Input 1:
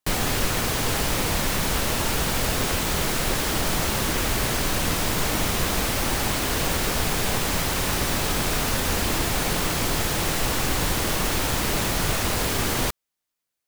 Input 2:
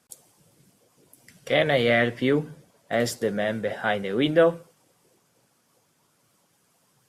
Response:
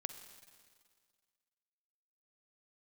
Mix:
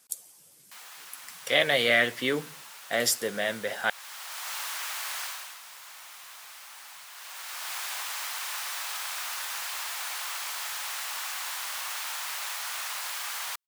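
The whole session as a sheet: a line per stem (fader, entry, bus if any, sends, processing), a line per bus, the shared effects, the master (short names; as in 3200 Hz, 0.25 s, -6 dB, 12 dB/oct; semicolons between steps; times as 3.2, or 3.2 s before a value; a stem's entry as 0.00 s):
-7.5 dB, 0.65 s, no send, HPF 900 Hz 24 dB/oct; auto duck -12 dB, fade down 0.35 s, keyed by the second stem
-2.0 dB, 0.00 s, muted 3.9–5.59, no send, tilt +3.5 dB/oct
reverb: off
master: dry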